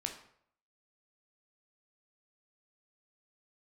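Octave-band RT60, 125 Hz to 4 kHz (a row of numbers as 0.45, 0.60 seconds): 0.70, 0.60, 0.65, 0.65, 0.55, 0.45 seconds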